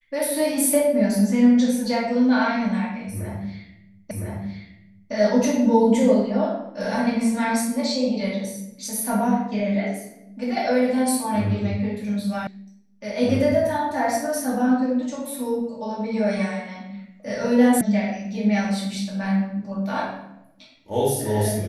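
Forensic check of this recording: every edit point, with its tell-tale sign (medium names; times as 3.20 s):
4.11 s: repeat of the last 1.01 s
12.47 s: sound stops dead
17.81 s: sound stops dead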